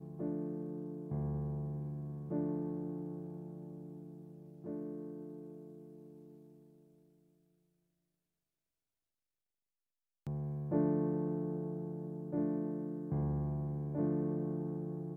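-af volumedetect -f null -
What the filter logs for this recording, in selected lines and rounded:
mean_volume: -39.7 dB
max_volume: -20.7 dB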